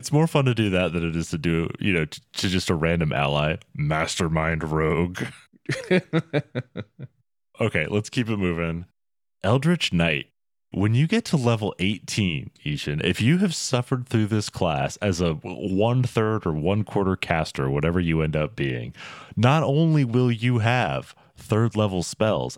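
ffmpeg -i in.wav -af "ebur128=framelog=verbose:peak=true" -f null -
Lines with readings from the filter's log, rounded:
Integrated loudness:
  I:         -23.5 LUFS
  Threshold: -33.9 LUFS
Loudness range:
  LRA:         3.9 LU
  Threshold: -44.1 LUFS
  LRA low:   -26.3 LUFS
  LRA high:  -22.4 LUFS
True peak:
  Peak:       -2.8 dBFS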